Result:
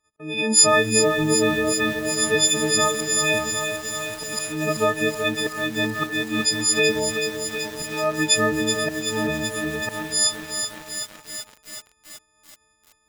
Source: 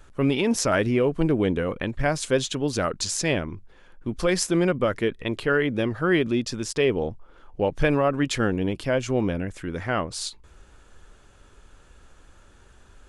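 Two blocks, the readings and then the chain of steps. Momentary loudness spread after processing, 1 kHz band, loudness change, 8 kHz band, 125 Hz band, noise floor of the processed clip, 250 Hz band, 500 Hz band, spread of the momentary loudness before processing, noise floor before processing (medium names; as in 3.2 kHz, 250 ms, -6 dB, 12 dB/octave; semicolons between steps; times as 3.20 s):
11 LU, +3.5 dB, +3.5 dB, +12.5 dB, -4.0 dB, -64 dBFS, -1.0 dB, +0.5 dB, 9 LU, -53 dBFS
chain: partials quantised in pitch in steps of 6 st; band-passed feedback delay 300 ms, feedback 63%, band-pass 740 Hz, level -14.5 dB; slow attack 378 ms; high-pass 110 Hz 6 dB/octave; gate -47 dBFS, range -27 dB; bit-crushed delay 379 ms, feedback 80%, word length 6-bit, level -6.5 dB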